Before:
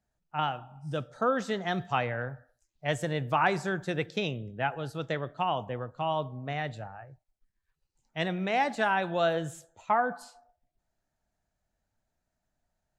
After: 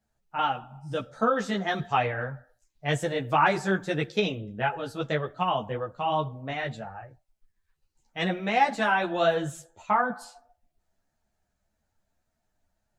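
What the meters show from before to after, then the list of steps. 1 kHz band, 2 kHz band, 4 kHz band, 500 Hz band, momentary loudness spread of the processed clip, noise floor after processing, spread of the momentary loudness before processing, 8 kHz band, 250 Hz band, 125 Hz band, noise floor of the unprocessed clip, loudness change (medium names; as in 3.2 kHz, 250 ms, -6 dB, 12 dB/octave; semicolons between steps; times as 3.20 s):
+3.5 dB, +3.5 dB, +3.5 dB, +2.5 dB, 13 LU, -79 dBFS, 13 LU, +3.5 dB, +3.5 dB, +1.5 dB, -83 dBFS, +3.0 dB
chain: three-phase chorus; trim +6.5 dB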